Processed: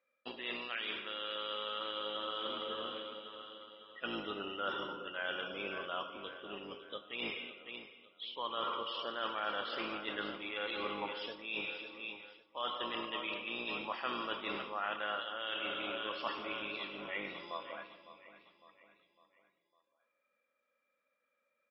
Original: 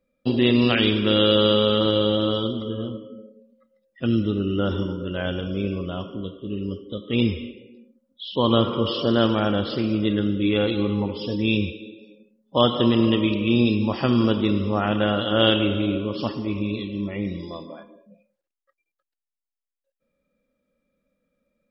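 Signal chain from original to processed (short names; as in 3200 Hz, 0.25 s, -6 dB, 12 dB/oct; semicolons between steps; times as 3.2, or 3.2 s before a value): octaver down 2 oct, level +2 dB; HPF 1200 Hz 12 dB/oct; feedback echo 0.555 s, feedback 47%, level -15 dB; reverse; compressor 12:1, threshold -36 dBFS, peak gain reduction 18.5 dB; reverse; LPF 2200 Hz 12 dB/oct; gain +4.5 dB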